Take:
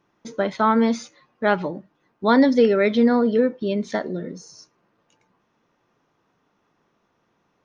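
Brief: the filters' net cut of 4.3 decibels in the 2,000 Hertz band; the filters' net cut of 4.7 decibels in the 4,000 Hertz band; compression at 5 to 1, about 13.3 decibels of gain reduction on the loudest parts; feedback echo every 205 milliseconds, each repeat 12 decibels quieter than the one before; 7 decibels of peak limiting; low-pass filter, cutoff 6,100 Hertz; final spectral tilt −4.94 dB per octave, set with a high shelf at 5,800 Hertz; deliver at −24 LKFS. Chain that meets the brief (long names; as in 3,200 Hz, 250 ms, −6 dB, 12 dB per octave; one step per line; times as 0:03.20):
low-pass filter 6,100 Hz
parametric band 2,000 Hz −5.5 dB
parametric band 4,000 Hz −6.5 dB
high-shelf EQ 5,800 Hz +9 dB
downward compressor 5 to 1, threshold −27 dBFS
brickwall limiter −22 dBFS
repeating echo 205 ms, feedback 25%, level −12 dB
level +8.5 dB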